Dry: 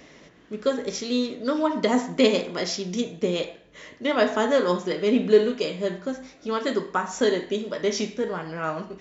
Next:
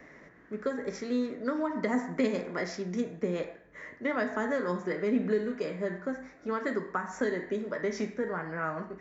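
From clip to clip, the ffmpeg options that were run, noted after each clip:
ffmpeg -i in.wav -filter_complex "[0:a]highshelf=frequency=2400:width_type=q:width=3:gain=-8.5,acrossover=split=250|3000[link_01][link_02][link_03];[link_02]acompressor=threshold=-25dB:ratio=6[link_04];[link_01][link_04][link_03]amix=inputs=3:normalize=0,volume=-4dB" out.wav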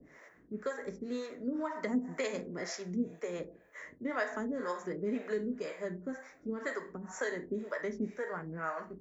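ffmpeg -i in.wav -filter_complex "[0:a]aexciter=amount=1.4:drive=8.3:freq=6300,acrossover=split=440[link_01][link_02];[link_01]aeval=exprs='val(0)*(1-1/2+1/2*cos(2*PI*2*n/s))':channel_layout=same[link_03];[link_02]aeval=exprs='val(0)*(1-1/2-1/2*cos(2*PI*2*n/s))':channel_layout=same[link_04];[link_03][link_04]amix=inputs=2:normalize=0" out.wav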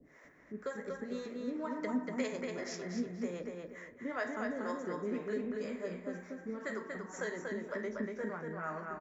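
ffmpeg -i in.wav -filter_complex "[0:a]asplit=2[link_01][link_02];[link_02]adelay=238,lowpass=frequency=4400:poles=1,volume=-3dB,asplit=2[link_03][link_04];[link_04]adelay=238,lowpass=frequency=4400:poles=1,volume=0.34,asplit=2[link_05][link_06];[link_06]adelay=238,lowpass=frequency=4400:poles=1,volume=0.34,asplit=2[link_07][link_08];[link_08]adelay=238,lowpass=frequency=4400:poles=1,volume=0.34[link_09];[link_01][link_03][link_05][link_07][link_09]amix=inputs=5:normalize=0,volume=-3.5dB" out.wav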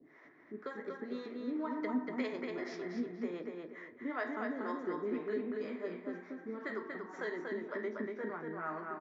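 ffmpeg -i in.wav -af "highpass=180,equalizer=frequency=190:width_type=q:width=4:gain=-7,equalizer=frequency=340:width_type=q:width=4:gain=5,equalizer=frequency=540:width_type=q:width=4:gain=-8,equalizer=frequency=1600:width_type=q:width=4:gain=-3,equalizer=frequency=2700:width_type=q:width=4:gain=-5,lowpass=frequency=4100:width=0.5412,lowpass=frequency=4100:width=1.3066,volume=1.5dB" out.wav

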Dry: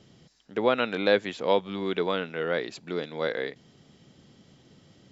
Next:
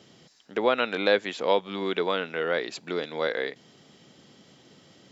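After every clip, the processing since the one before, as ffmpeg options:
ffmpeg -i in.wav -filter_complex "[0:a]highpass=frequency=340:poles=1,asplit=2[link_01][link_02];[link_02]acompressor=threshold=-33dB:ratio=6,volume=-1.5dB[link_03];[link_01][link_03]amix=inputs=2:normalize=0" out.wav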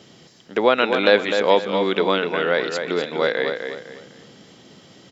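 ffmpeg -i in.wav -filter_complex "[0:a]asplit=2[link_01][link_02];[link_02]adelay=252,lowpass=frequency=4900:poles=1,volume=-6.5dB,asplit=2[link_03][link_04];[link_04]adelay=252,lowpass=frequency=4900:poles=1,volume=0.32,asplit=2[link_05][link_06];[link_06]adelay=252,lowpass=frequency=4900:poles=1,volume=0.32,asplit=2[link_07][link_08];[link_08]adelay=252,lowpass=frequency=4900:poles=1,volume=0.32[link_09];[link_01][link_03][link_05][link_07][link_09]amix=inputs=5:normalize=0,volume=6.5dB" out.wav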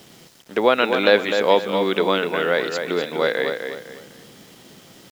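ffmpeg -i in.wav -af "acrusher=bits=7:mix=0:aa=0.000001" out.wav

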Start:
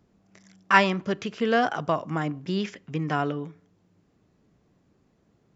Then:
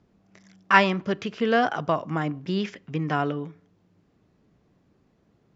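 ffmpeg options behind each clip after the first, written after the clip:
ffmpeg -i in.wav -af "lowpass=5800,volume=1dB" out.wav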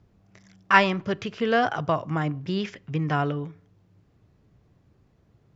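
ffmpeg -i in.wav -af "lowshelf=frequency=150:width_type=q:width=1.5:gain=7" out.wav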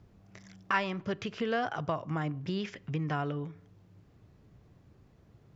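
ffmpeg -i in.wav -af "acompressor=threshold=-38dB:ratio=2,volume=1.5dB" out.wav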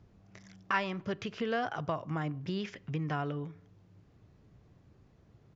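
ffmpeg -i in.wav -af "aresample=16000,aresample=44100,volume=-1.5dB" out.wav

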